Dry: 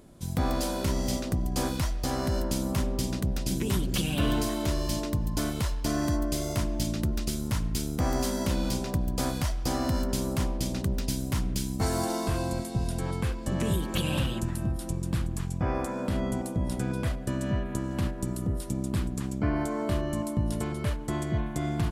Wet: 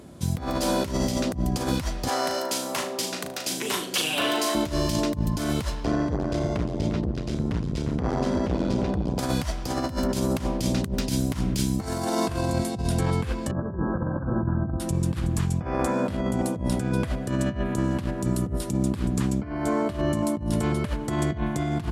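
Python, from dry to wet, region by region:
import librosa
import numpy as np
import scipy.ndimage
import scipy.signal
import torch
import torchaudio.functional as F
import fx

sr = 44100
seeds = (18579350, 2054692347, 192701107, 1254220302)

y = fx.chain(x, sr, fx.highpass(hz=560.0, slope=12),
    fx.room_flutter(wall_m=6.5, rt60_s=0.32), at=(2.08, 4.55))
y = fx.chain(y, sr, fx.spacing_loss(db_at_10k=21),
    fx.echo_single(ms=352, db=-9.5),
    fx.transformer_sat(knee_hz=320.0), at=(5.84, 9.19))
y = fx.chain(y, sr, fx.brickwall_lowpass(high_hz=1700.0),
    fx.hum_notches(base_hz=50, count=2), at=(13.51, 14.8))
y = scipy.signal.sosfilt(scipy.signal.butter(4, 57.0, 'highpass', fs=sr, output='sos'), y)
y = fx.high_shelf(y, sr, hz=11000.0, db=-7.5)
y = fx.over_compress(y, sr, threshold_db=-31.0, ratio=-0.5)
y = F.gain(torch.from_numpy(y), 6.5).numpy()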